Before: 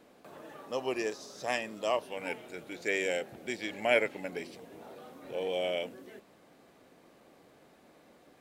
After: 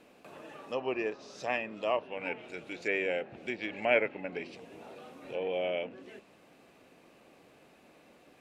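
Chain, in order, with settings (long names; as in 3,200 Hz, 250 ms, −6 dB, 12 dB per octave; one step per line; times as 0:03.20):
treble cut that deepens with the level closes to 2,100 Hz, closed at −32 dBFS
parametric band 2,600 Hz +9 dB 0.29 octaves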